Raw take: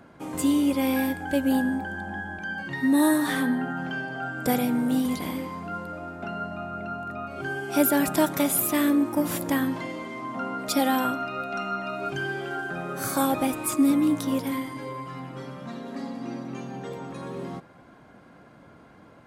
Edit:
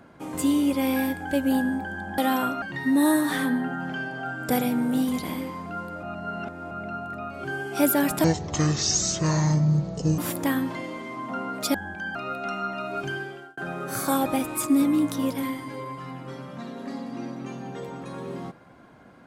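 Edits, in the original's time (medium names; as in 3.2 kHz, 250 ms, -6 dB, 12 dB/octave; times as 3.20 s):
2.18–2.59 s: swap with 10.80–11.24 s
6.00–6.68 s: reverse
8.21–9.24 s: speed 53%
12.15–12.66 s: fade out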